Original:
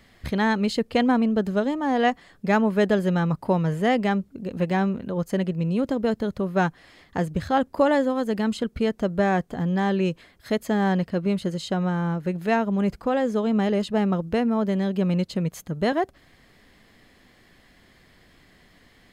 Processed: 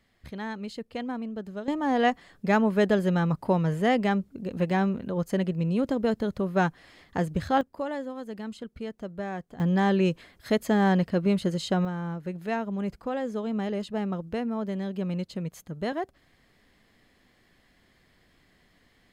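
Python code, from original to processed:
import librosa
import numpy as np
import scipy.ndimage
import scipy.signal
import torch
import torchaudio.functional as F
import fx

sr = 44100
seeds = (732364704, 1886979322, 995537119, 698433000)

y = fx.gain(x, sr, db=fx.steps((0.0, -13.0), (1.68, -2.0), (7.61, -12.5), (9.6, 0.0), (11.85, -7.5)))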